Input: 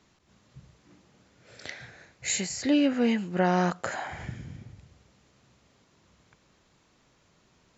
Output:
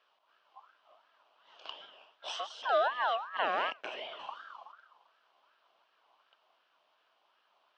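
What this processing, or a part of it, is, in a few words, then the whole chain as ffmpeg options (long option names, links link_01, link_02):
voice changer toy: -filter_complex "[0:a]aeval=exprs='val(0)*sin(2*PI*1200*n/s+1200*0.25/2.7*sin(2*PI*2.7*n/s))':channel_layout=same,highpass=440,equalizer=frequency=630:width_type=q:width=4:gain=8,equalizer=frequency=1000:width_type=q:width=4:gain=4,equalizer=frequency=2000:width_type=q:width=4:gain=-6,equalizer=frequency=3000:width_type=q:width=4:gain=8,lowpass=frequency=4400:width=0.5412,lowpass=frequency=4400:width=1.3066,asettb=1/sr,asplit=3[link_01][link_02][link_03];[link_01]atrim=end=4.194[link_04];[link_02]atrim=start=4.19:end=4.72,asetpts=PTS-STARTPTS,afade=type=in:duration=0.004:curve=qsin,afade=type=out:start_time=0.526:duration=0.004:curve=qsin,bass=frequency=250:gain=10,treble=frequency=4000:gain=8[link_05];[link_03]atrim=start=4.716[link_06];[link_04][link_05]acrossfade=duration=0.004:curve1=hsin:curve2=qsin[link_07];[link_07][link_06]acrossfade=duration=0.004:curve1=qsin:curve2=hsin,volume=-6dB"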